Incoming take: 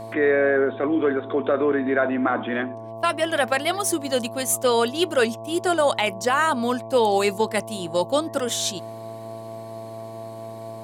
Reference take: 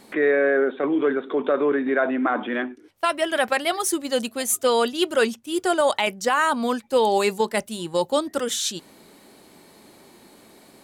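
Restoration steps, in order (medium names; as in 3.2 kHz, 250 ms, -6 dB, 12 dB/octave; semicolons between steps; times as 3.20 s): de-hum 112.4 Hz, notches 10; band-stop 670 Hz, Q 30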